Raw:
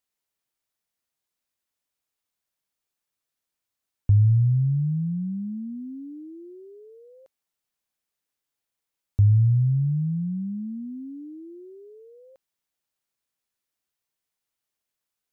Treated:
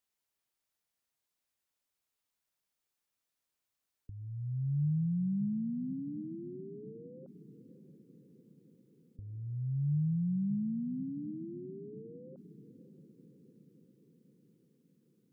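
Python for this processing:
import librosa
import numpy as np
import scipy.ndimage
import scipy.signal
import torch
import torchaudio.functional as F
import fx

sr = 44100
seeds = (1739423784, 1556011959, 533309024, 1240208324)

y = fx.dynamic_eq(x, sr, hz=120.0, q=0.74, threshold_db=-30.0, ratio=4.0, max_db=-4)
y = fx.over_compress(y, sr, threshold_db=-27.0, ratio=-0.5)
y = fx.spec_gate(y, sr, threshold_db=-30, keep='strong')
y = fx.echo_diffused(y, sr, ms=601, feedback_pct=62, wet_db=-15.5)
y = y * 10.0 ** (-5.0 / 20.0)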